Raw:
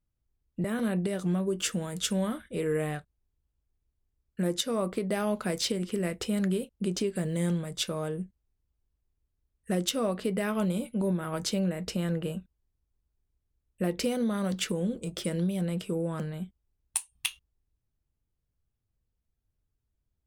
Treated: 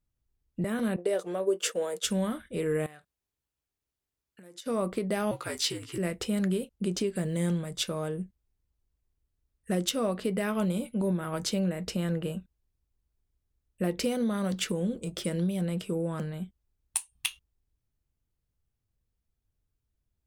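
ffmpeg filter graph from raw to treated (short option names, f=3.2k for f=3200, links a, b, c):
-filter_complex "[0:a]asettb=1/sr,asplit=3[a][b][c];[a]atrim=end=0.964[d];[b]atrim=start=0.96:end=2.05,asetpts=PTS-STARTPTS,afade=t=in:d=0.004:c=qsin,afade=t=out:st=1.086:d=0.004:c=qsin,highpass=f=480:t=q:w=3.4,agate=range=-33dB:threshold=-34dB:ratio=3:release=100:detection=peak[e];[c]atrim=start=2.046[f];[d][e]acrossfade=d=0.004:c1=hsin:c2=qsin[g];[g][f]acrossfade=d=0.004:c1=qsin:c2=hsin,asettb=1/sr,asplit=3[h][i][j];[h]atrim=end=2.864[k];[i]atrim=start=2.86:end=4.66,asetpts=PTS-STARTPTS,afade=t=in:d=0.004:c=qsin,afade=t=out:st=1.796:d=0.004:c=qsin,acompressor=threshold=-43dB:ratio=12:attack=3.2:release=140:knee=1:detection=peak,highpass=f=250:p=1,tiltshelf=f=680:g=-3[l];[j]atrim=start=4.656[m];[k][l]acrossfade=d=0.004:c1=hsin:c2=qsin[n];[n][m]acrossfade=d=0.004:c1=qsin:c2=hsin,asettb=1/sr,asplit=3[o][p][q];[o]atrim=end=5.314[r];[p]atrim=start=5.31:end=5.98,asetpts=PTS-STARTPTS,afade=t=in:d=0.004:c=qsin,afade=t=out:st=0.666:d=0.004:c=qsin,highpass=f=790:p=1,afreqshift=-78,asplit=2[s][t];[t]adelay=16,volume=-5dB[u];[s][u]amix=inputs=2:normalize=0,atrim=end_sample=29547[v];[q]atrim=start=5.976[w];[r][v]acrossfade=d=0.004:c1=hsin:c2=qsin[x];[x][w]acrossfade=d=0.004:c1=qsin:c2=hsin"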